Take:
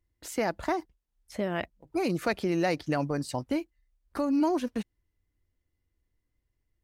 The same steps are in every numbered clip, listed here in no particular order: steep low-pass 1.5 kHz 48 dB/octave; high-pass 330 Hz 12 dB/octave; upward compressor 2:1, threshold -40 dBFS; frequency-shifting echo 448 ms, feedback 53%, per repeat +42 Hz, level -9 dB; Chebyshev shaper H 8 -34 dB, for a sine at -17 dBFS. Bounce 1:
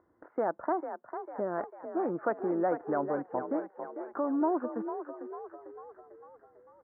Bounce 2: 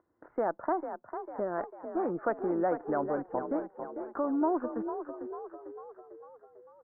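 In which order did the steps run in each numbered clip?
Chebyshev shaper > high-pass > upward compressor > steep low-pass > frequency-shifting echo; upward compressor > frequency-shifting echo > high-pass > Chebyshev shaper > steep low-pass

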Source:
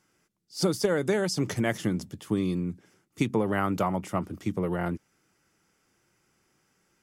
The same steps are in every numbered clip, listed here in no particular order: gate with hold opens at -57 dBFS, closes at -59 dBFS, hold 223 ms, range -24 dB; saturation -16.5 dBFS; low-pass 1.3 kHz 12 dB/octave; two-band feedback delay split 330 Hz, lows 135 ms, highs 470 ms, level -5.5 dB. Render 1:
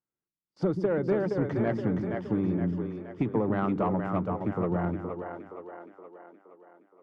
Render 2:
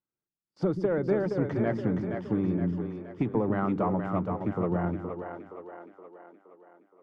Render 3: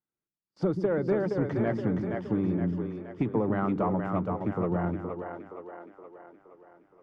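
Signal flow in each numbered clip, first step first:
low-pass > gate with hold > two-band feedback delay > saturation; saturation > low-pass > gate with hold > two-band feedback delay; two-band feedback delay > saturation > low-pass > gate with hold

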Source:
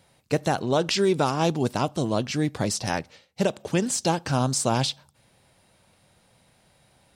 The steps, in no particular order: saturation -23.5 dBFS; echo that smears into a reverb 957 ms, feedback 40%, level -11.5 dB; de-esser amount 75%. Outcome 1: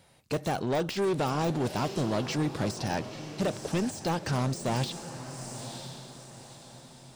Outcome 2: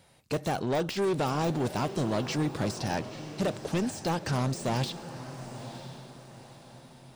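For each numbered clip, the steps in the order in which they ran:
saturation > echo that smears into a reverb > de-esser; saturation > de-esser > echo that smears into a reverb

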